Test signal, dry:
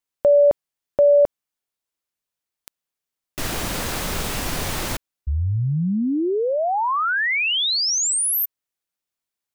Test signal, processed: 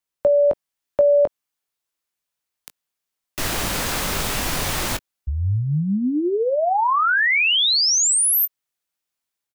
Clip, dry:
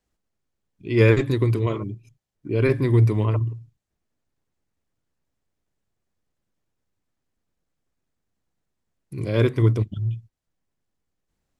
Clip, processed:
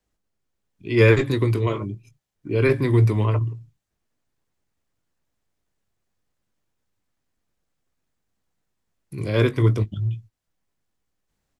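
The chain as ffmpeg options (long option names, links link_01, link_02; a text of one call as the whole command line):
ffmpeg -i in.wav -filter_complex "[0:a]acrossover=split=330|680[link_01][link_02][link_03];[link_03]dynaudnorm=framelen=360:gausssize=3:maxgain=3dB[link_04];[link_01][link_02][link_04]amix=inputs=3:normalize=0,asplit=2[link_05][link_06];[link_06]adelay=20,volume=-12dB[link_07];[link_05][link_07]amix=inputs=2:normalize=0" out.wav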